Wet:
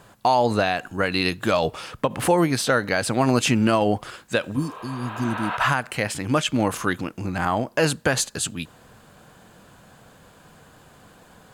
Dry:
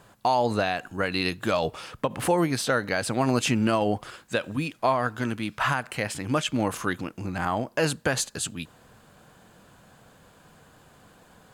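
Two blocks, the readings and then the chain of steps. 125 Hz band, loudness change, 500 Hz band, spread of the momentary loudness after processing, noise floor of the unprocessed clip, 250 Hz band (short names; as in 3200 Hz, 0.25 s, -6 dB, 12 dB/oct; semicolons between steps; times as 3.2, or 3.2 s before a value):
+4.0 dB, +3.5 dB, +3.5 dB, 9 LU, -56 dBFS, +4.0 dB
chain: spectral repair 4.59–5.54, 370–4400 Hz both; gain +4 dB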